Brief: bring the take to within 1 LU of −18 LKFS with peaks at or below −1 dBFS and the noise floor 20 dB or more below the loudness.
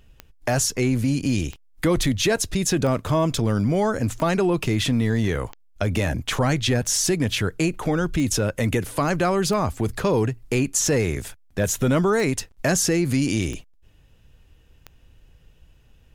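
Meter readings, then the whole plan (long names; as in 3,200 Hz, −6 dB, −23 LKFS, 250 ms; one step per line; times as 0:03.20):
number of clicks 12; integrated loudness −22.5 LKFS; sample peak −9.5 dBFS; target loudness −18.0 LKFS
→ click removal
level +4.5 dB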